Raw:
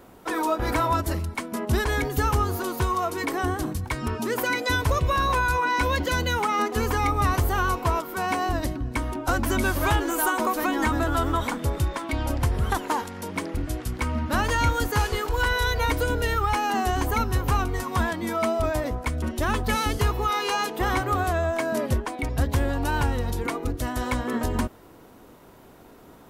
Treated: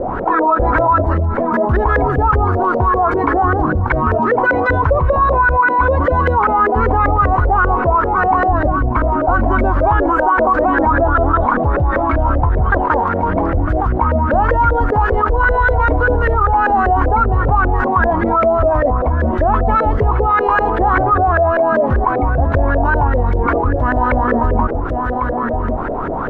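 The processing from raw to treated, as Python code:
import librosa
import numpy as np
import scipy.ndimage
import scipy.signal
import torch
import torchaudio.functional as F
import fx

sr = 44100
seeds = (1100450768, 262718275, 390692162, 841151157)

y = fx.low_shelf(x, sr, hz=64.0, db=11.0)
y = y + 10.0 ** (-13.5 / 20.0) * np.pad(y, (int(1096 * sr / 1000.0), 0))[:len(y)]
y = fx.filter_lfo_lowpass(y, sr, shape='saw_up', hz=5.1, low_hz=510.0, high_hz=1700.0, q=6.0)
y = fx.env_flatten(y, sr, amount_pct=70)
y = y * 10.0 ** (-2.0 / 20.0)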